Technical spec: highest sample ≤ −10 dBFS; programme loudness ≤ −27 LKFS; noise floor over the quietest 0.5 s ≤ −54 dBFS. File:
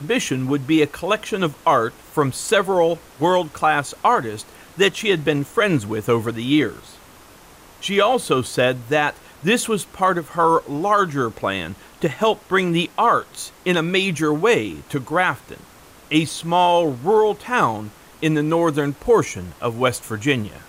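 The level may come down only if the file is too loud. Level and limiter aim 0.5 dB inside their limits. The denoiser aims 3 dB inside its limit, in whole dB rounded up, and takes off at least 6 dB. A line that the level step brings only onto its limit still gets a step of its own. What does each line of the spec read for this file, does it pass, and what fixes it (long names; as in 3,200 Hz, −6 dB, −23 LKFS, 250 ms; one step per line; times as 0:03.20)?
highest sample −5.5 dBFS: out of spec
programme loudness −20.0 LKFS: out of spec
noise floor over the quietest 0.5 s −46 dBFS: out of spec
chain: broadband denoise 6 dB, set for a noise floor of −46 dBFS
level −7.5 dB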